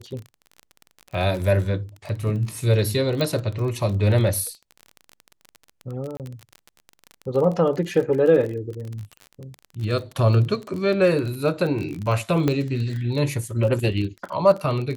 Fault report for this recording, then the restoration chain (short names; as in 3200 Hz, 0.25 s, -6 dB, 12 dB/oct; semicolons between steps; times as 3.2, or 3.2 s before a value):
crackle 32/s -28 dBFS
3.21 pop -12 dBFS
6.17–6.2 gap 28 ms
12.48 pop -9 dBFS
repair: de-click; interpolate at 6.17, 28 ms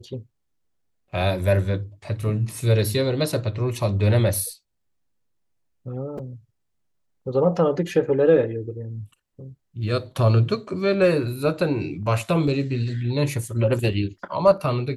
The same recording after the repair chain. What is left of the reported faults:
12.48 pop